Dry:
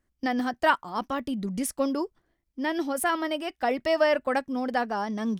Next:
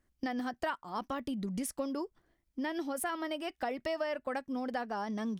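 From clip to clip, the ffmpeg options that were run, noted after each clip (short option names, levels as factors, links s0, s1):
-af "acompressor=threshold=0.02:ratio=4"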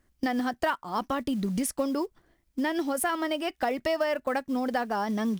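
-af "acrusher=bits=7:mode=log:mix=0:aa=0.000001,volume=2.37"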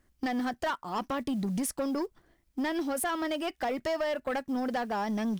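-af "asoftclip=type=tanh:threshold=0.0562"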